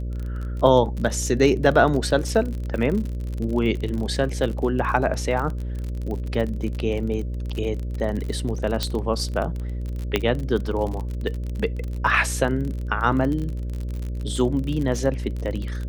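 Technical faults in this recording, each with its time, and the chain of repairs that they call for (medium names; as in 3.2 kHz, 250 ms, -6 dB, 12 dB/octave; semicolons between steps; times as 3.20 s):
buzz 60 Hz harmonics 10 -28 dBFS
crackle 41 per s -28 dBFS
8.83 s: pop -9 dBFS
10.16 s: pop -6 dBFS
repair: de-click; de-hum 60 Hz, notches 10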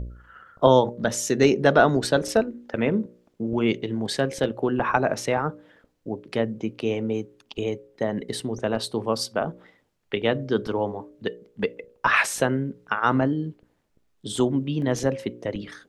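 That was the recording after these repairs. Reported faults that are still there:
nothing left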